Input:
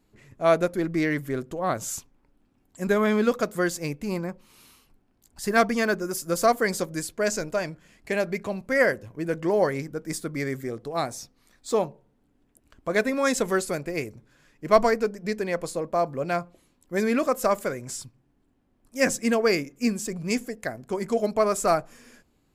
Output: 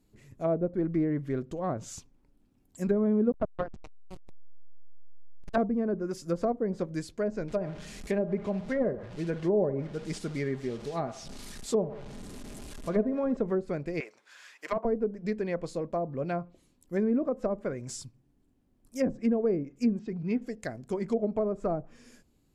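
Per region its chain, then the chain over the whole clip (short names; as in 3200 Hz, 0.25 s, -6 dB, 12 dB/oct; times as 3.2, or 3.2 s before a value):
3.32–5.58 EQ curve 110 Hz 0 dB, 170 Hz -18 dB, 260 Hz +5 dB, 380 Hz -20 dB, 570 Hz +7 dB, 800 Hz +11 dB, 2800 Hz +2 dB, 4200 Hz -14 dB, 7200 Hz +6 dB, 13000 Hz -14 dB + backlash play -16.5 dBFS
7.48–13.37 delta modulation 64 kbps, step -35.5 dBFS + comb 4.9 ms, depth 34% + band-limited delay 60 ms, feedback 50%, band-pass 800 Hz, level -12 dB
14–14.85 HPF 940 Hz + overdrive pedal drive 19 dB, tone 1500 Hz, clips at -9.5 dBFS + mismatched tape noise reduction encoder only
19.99–20.42 air absorption 230 m + notch comb 570 Hz
whole clip: treble ducked by the level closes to 600 Hz, closed at -19 dBFS; bell 1300 Hz -8 dB 2.9 oct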